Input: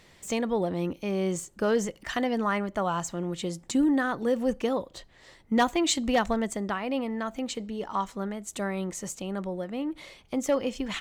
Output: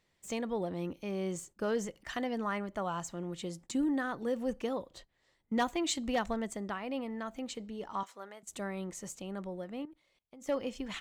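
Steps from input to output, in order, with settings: 8.03–8.43 HPF 570 Hz 12 dB/oct; gate -45 dBFS, range -12 dB; 9.85–10.48 level quantiser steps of 22 dB; gain -7.5 dB

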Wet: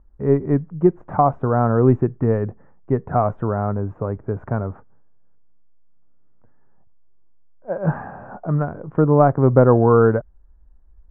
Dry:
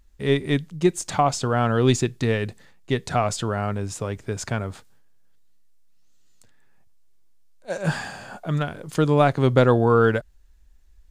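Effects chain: inverse Chebyshev low-pass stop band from 4100 Hz, stop band 60 dB; gain +4 dB

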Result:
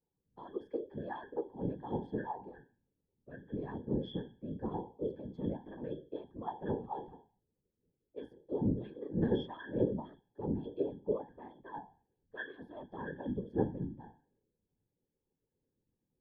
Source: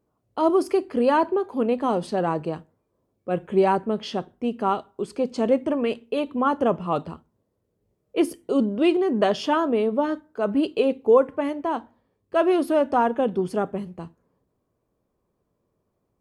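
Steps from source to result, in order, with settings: octave resonator G#, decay 0.38 s; whisperiser; gain +1 dB

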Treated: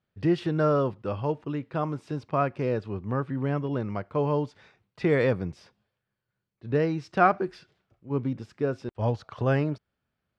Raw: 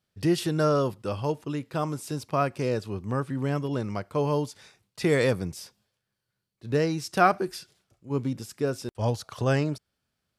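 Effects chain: LPF 2500 Hz 12 dB/oct

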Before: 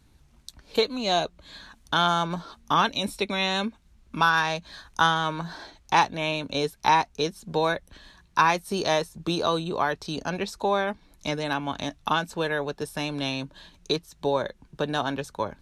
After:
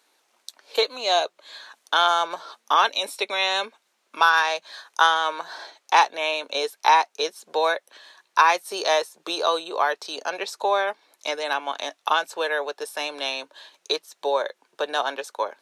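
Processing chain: HPF 450 Hz 24 dB/oct; gain +3.5 dB

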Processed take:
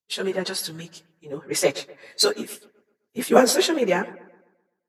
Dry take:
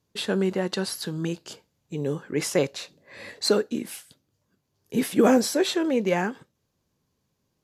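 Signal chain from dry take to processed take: low shelf 360 Hz -10.5 dB; plain phase-vocoder stretch 0.64×; analogue delay 0.128 s, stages 2048, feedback 64%, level -16 dB; three-band expander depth 70%; gain +7.5 dB

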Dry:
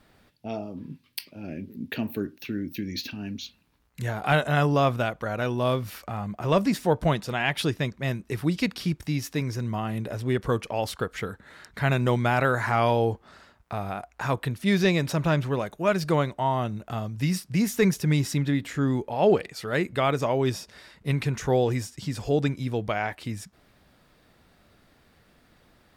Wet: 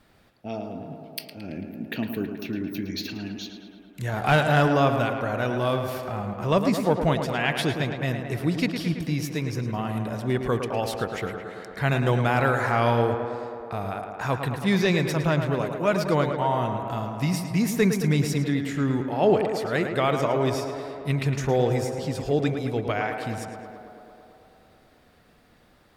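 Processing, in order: 4.13–4.68 sample leveller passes 1; on a send: tape echo 0.109 s, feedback 85%, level -6 dB, low-pass 2900 Hz

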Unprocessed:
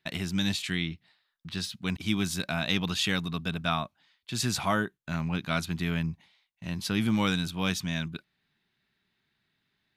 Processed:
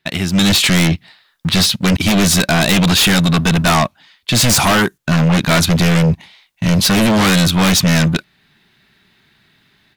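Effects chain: 4.49–4.98 resonant high shelf 4500 Hz +8 dB, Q 1.5; AGC gain up to 13.5 dB; sample leveller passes 1; in parallel at -9 dB: sine folder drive 15 dB, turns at -1 dBFS; on the sum: gain -2.5 dB

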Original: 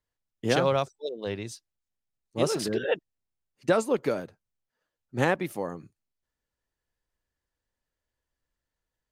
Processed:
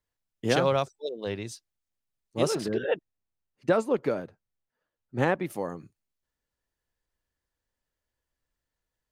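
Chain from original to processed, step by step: 2.55–5.5 high shelf 3700 Hz -10.5 dB

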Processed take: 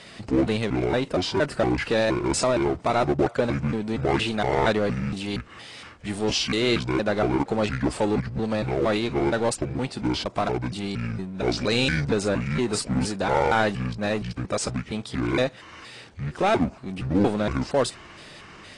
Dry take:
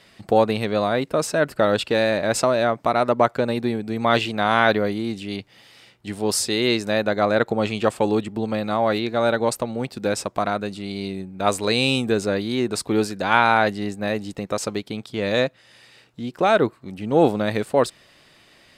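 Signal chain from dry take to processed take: trilling pitch shifter -9 st, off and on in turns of 0.233 s; power-law curve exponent 0.7; gain -7 dB; AAC 32 kbps 22050 Hz

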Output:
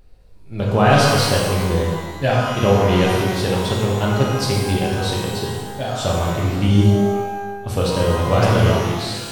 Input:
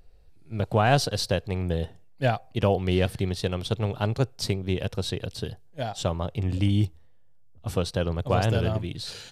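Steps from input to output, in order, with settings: shimmer reverb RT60 1.3 s, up +12 st, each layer -8 dB, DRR -3.5 dB; gain +3 dB

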